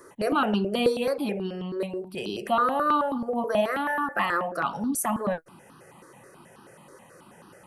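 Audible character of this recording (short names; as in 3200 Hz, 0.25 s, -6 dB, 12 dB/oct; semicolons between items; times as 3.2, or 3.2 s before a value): notches that jump at a steady rate 9.3 Hz 760–2100 Hz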